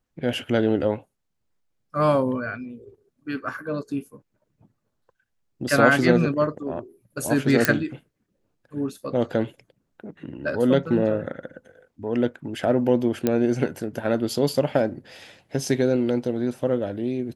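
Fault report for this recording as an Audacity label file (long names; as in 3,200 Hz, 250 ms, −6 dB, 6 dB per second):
7.650000	7.650000	click −1 dBFS
13.270000	13.270000	click −8 dBFS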